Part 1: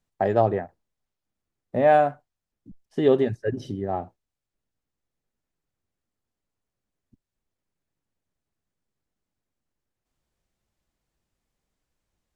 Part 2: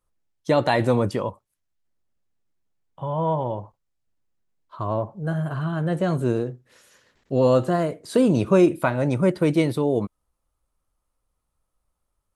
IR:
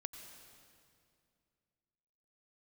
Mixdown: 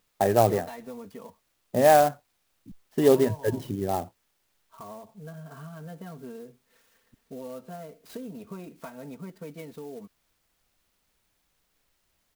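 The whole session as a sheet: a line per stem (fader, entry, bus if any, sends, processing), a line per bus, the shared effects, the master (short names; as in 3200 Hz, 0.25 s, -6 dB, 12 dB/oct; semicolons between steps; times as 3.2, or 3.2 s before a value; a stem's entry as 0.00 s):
0.0 dB, 0.00 s, no send, requantised 12-bit, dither triangular; vibrato 5.9 Hz 44 cents
-12.0 dB, 0.00 s, no send, comb 4.4 ms, depth 98%; compressor 3:1, threshold -29 dBFS, peak gain reduction 14.5 dB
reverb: off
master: clock jitter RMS 0.037 ms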